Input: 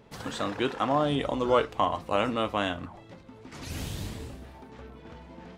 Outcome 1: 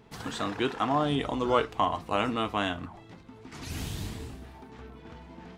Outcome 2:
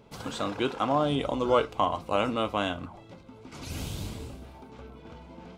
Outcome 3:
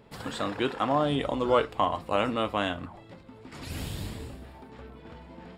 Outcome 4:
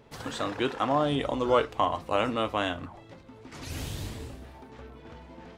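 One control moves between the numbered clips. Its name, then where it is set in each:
band-stop, frequency: 550 Hz, 1.8 kHz, 6.1 kHz, 190 Hz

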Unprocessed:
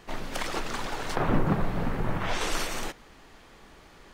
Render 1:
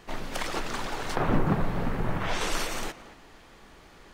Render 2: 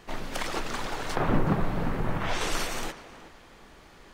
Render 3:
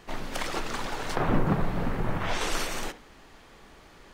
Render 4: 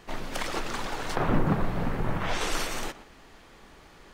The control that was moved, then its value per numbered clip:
tape echo, time: 226 ms, 373 ms, 68 ms, 117 ms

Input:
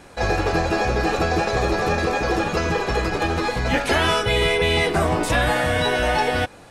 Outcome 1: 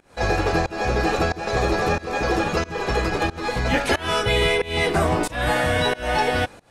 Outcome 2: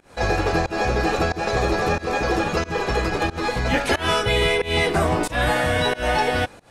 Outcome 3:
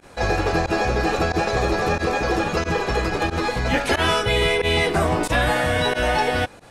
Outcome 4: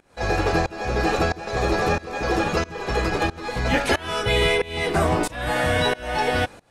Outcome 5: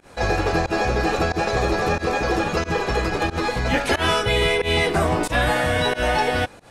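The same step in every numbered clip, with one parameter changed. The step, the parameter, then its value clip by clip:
volume shaper, release: 300 ms, 192 ms, 61 ms, 484 ms, 108 ms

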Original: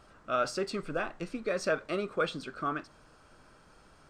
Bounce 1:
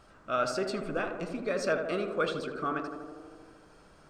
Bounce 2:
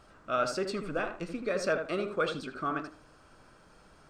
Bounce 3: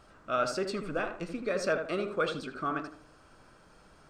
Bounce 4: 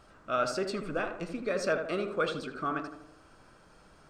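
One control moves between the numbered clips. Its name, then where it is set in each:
tape echo, feedback: 89%, 26%, 39%, 59%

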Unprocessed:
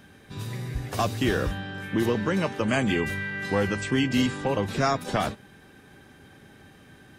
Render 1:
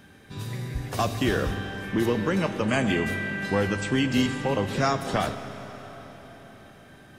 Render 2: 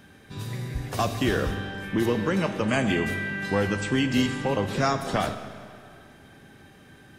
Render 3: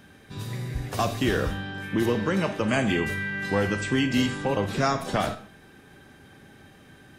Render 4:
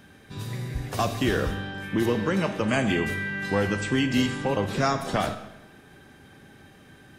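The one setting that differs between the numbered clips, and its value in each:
algorithmic reverb, RT60: 4.6 s, 2.1 s, 0.45 s, 0.96 s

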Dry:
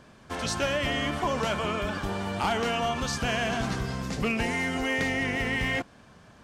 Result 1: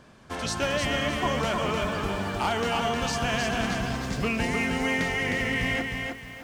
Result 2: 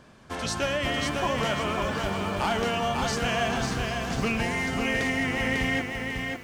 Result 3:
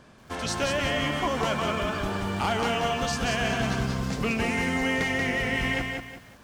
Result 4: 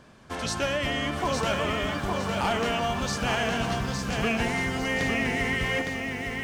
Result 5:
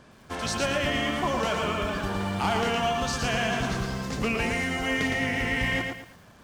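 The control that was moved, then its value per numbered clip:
bit-crushed delay, time: 309 ms, 547 ms, 183 ms, 860 ms, 113 ms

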